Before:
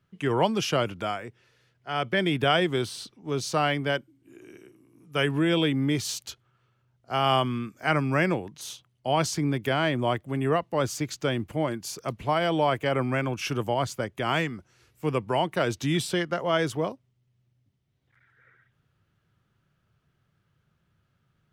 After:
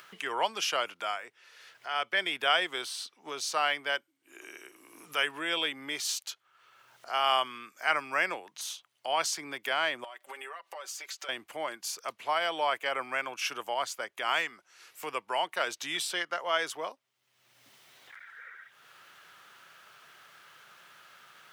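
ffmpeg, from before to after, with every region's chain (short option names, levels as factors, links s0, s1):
-filter_complex "[0:a]asettb=1/sr,asplit=3[s0][s1][s2];[s0]atrim=end=10.044[s3];[s1]atrim=start=10.04:end=11.29,asetpts=PTS-STARTPTS,afade=t=in:d=0.004:c=qsin,afade=t=out:st=1.246:d=0.004:c=qsin,highpass=480,acompressor=threshold=0.01:ratio=12:attack=3.2:release=140:knee=1:detection=peak,aecho=1:1:5.2:0.7,atrim=end_sample=55125[s4];[s2]atrim=start=11.286[s5];[s3][s4]acrossfade=d=0.004:c1=hsin:c2=qsin[s6];[s6][s5]acrossfade=d=0.004:c1=qsin:c2=hsin,highpass=880,acompressor=mode=upward:threshold=0.0178:ratio=2.5"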